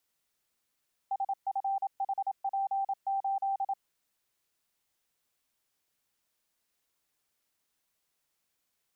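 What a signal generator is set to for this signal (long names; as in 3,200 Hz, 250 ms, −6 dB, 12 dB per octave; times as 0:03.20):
Morse code "SFHP8" 27 words per minute 784 Hz −27.5 dBFS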